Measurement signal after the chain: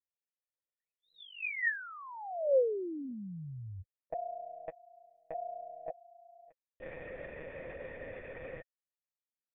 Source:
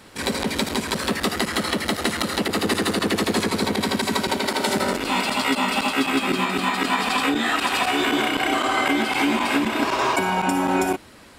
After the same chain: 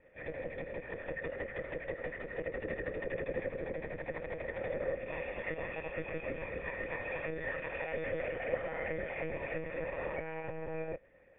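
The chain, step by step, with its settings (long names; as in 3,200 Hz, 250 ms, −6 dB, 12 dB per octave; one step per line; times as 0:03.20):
one-pitch LPC vocoder at 8 kHz 160 Hz
formant resonators in series e
level −2 dB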